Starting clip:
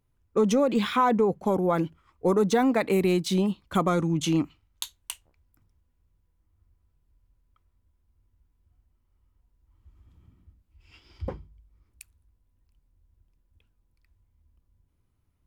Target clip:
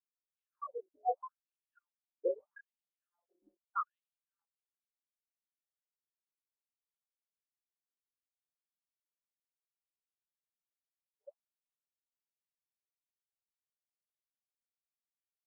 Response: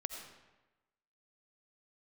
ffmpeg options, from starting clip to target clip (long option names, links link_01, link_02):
-filter_complex "[0:a]equalizer=frequency=370:width=1.7:gain=-14,acrossover=split=500|1300[link_01][link_02][link_03];[link_01]acompressor=threshold=-30dB:ratio=4[link_04];[link_02]acompressor=threshold=-39dB:ratio=4[link_05];[link_03]acompressor=threshold=-45dB:ratio=4[link_06];[link_04][link_05][link_06]amix=inputs=3:normalize=0,highshelf=frequency=2200:gain=10,afftfilt=real='re*gte(hypot(re,im),0.112)':imag='im*gte(hypot(re,im),0.112)':win_size=1024:overlap=0.75,flanger=delay=19.5:depth=6.2:speed=0.18,asuperstop=centerf=2100:order=8:qfactor=2.7,afftfilt=real='re*between(b*sr/1024,420*pow(3500/420,0.5+0.5*sin(2*PI*0.79*pts/sr))/1.41,420*pow(3500/420,0.5+0.5*sin(2*PI*0.79*pts/sr))*1.41)':imag='im*between(b*sr/1024,420*pow(3500/420,0.5+0.5*sin(2*PI*0.79*pts/sr))/1.41,420*pow(3500/420,0.5+0.5*sin(2*PI*0.79*pts/sr))*1.41)':win_size=1024:overlap=0.75,volume=8dB"